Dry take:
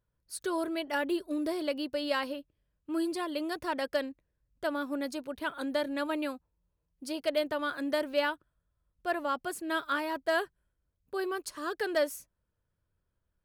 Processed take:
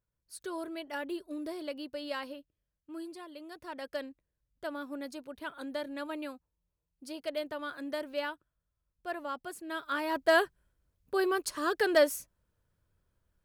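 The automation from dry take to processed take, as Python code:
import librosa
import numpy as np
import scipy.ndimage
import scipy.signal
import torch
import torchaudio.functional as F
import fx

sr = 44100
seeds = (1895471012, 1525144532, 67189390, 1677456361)

y = fx.gain(x, sr, db=fx.line((2.34, -6.5), (3.4, -13.5), (4.01, -6.0), (9.79, -6.0), (10.22, 4.5)))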